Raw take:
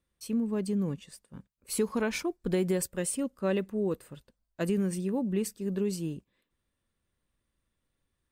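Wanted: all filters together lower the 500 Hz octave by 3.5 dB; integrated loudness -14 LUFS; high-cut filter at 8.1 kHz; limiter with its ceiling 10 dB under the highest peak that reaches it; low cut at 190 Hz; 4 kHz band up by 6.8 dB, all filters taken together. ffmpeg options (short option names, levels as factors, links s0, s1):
-af "highpass=190,lowpass=8100,equalizer=f=500:t=o:g=-4.5,equalizer=f=4000:t=o:g=9,volume=14.1,alimiter=limit=0.596:level=0:latency=1"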